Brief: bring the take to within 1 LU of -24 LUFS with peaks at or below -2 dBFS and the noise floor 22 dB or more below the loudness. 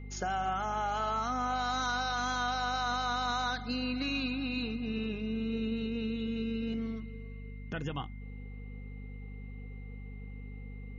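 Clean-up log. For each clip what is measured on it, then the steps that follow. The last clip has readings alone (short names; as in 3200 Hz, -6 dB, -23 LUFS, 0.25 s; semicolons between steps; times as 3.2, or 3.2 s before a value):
hum 50 Hz; harmonics up to 250 Hz; hum level -41 dBFS; steady tone 2100 Hz; tone level -57 dBFS; loudness -33.5 LUFS; peak -22.5 dBFS; loudness target -24.0 LUFS
-> de-hum 50 Hz, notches 5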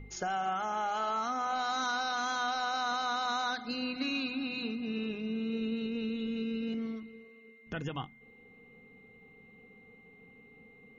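hum none; steady tone 2100 Hz; tone level -57 dBFS
-> notch 2100 Hz, Q 30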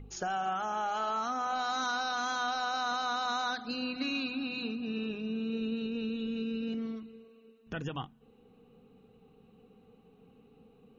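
steady tone none; loudness -34.0 LUFS; peak -23.0 dBFS; loudness target -24.0 LUFS
-> gain +10 dB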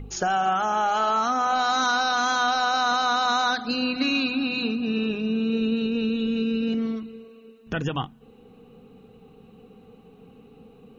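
loudness -24.0 LUFS; peak -13.0 dBFS; noise floor -52 dBFS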